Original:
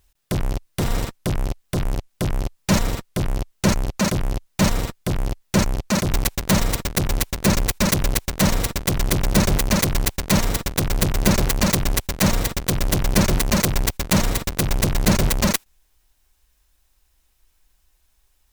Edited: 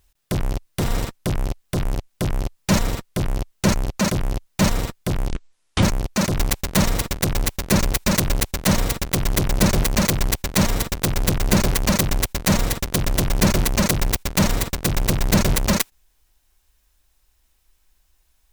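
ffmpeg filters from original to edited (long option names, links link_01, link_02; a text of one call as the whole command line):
ffmpeg -i in.wav -filter_complex "[0:a]asplit=3[link_01][link_02][link_03];[link_01]atrim=end=5.294[link_04];[link_02]atrim=start=5.29:end=5.57,asetpts=PTS-STARTPTS,asetrate=22932,aresample=44100,atrim=end_sample=23746,asetpts=PTS-STARTPTS[link_05];[link_03]atrim=start=5.566[link_06];[link_04][link_05]acrossfade=duration=0.004:curve1=hsin:curve2=hsin[link_07];[link_07][link_06]acrossfade=duration=0.004:curve1=hsin:curve2=hsin" out.wav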